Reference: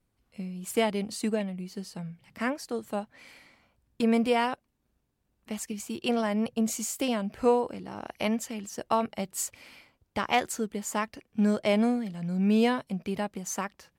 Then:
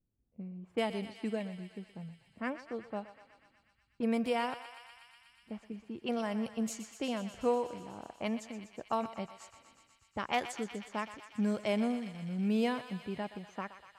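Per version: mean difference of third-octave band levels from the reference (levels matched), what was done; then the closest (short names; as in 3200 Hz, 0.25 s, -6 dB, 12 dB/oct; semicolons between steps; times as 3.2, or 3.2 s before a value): 4.5 dB: low-pass opened by the level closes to 400 Hz, open at -23 dBFS; on a send: thinning echo 0.122 s, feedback 84%, high-pass 830 Hz, level -11 dB; on the sum: gain -7 dB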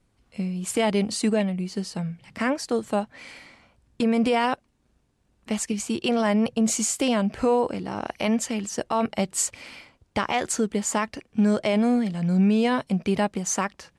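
3.0 dB: LPF 10000 Hz 24 dB/oct; limiter -22 dBFS, peak gain reduction 10 dB; gain +8.5 dB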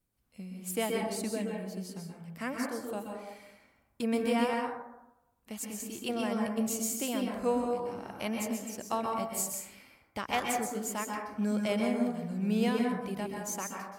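7.5 dB: high shelf 8300 Hz +11.5 dB; plate-style reverb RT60 0.92 s, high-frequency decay 0.35×, pre-delay 0.115 s, DRR 0 dB; gain -7 dB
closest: second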